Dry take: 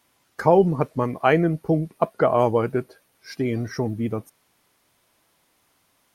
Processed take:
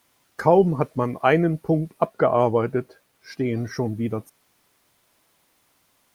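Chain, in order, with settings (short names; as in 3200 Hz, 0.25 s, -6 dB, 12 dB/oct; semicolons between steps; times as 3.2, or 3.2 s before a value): 2.06–3.57 high shelf 5300 Hz -6.5 dB; bit-crush 11-bit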